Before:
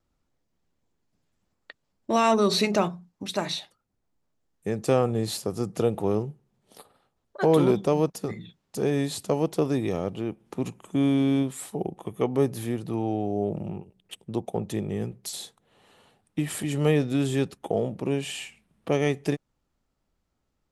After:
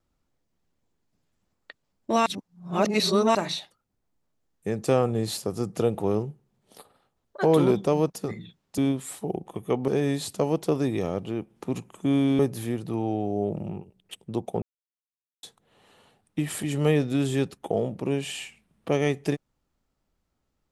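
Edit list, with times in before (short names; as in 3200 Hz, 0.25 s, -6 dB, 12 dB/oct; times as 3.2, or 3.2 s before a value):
2.26–3.35 reverse
11.29–12.39 move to 8.78
14.62–15.43 mute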